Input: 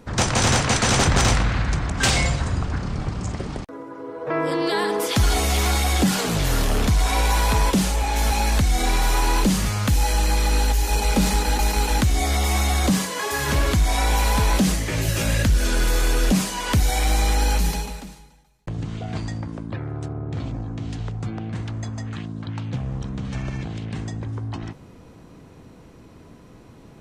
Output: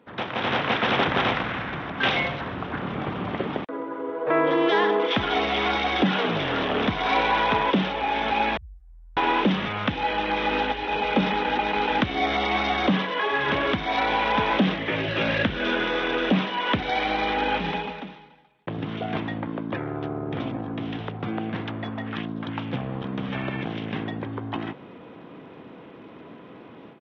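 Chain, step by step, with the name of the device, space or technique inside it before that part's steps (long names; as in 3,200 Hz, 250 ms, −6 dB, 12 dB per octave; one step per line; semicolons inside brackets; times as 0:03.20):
0:08.57–0:09.17: inverse Chebyshev band-stop filter 210–6,900 Hz, stop band 60 dB
Bluetooth headset (high-pass filter 240 Hz 12 dB per octave; automatic gain control gain up to 13 dB; downsampling to 8,000 Hz; level −7 dB; SBC 64 kbit/s 32,000 Hz)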